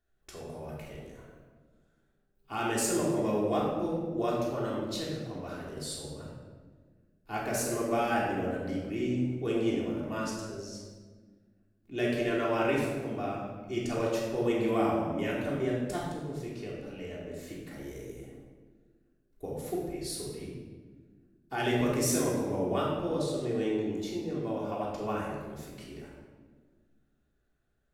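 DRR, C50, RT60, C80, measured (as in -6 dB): -5.5 dB, 0.0 dB, 1.5 s, 3.0 dB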